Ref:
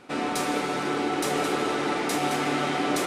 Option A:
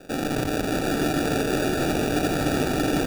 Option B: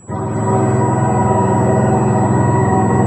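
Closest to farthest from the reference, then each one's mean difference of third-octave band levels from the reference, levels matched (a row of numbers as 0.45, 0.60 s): A, B; 5.5, 13.5 dB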